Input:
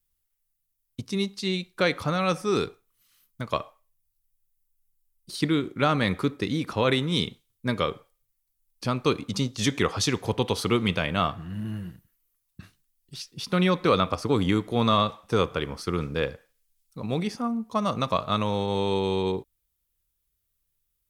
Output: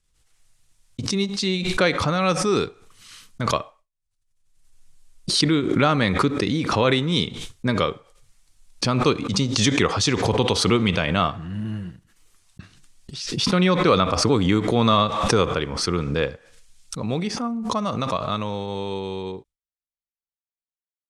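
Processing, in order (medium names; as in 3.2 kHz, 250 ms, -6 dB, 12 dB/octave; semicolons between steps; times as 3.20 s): fade out at the end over 4.76 s; low-pass 8.7 kHz 24 dB/octave; gate with hold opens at -52 dBFS; swell ahead of each attack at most 44 dB/s; trim +3.5 dB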